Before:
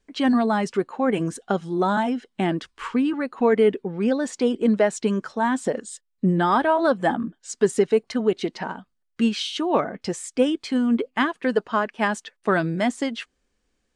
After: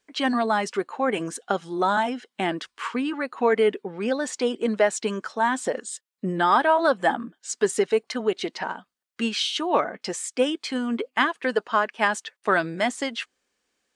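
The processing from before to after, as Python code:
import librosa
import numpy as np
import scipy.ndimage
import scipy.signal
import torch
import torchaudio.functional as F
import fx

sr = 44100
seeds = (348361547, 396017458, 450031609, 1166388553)

y = fx.highpass(x, sr, hz=670.0, slope=6)
y = y * librosa.db_to_amplitude(3.0)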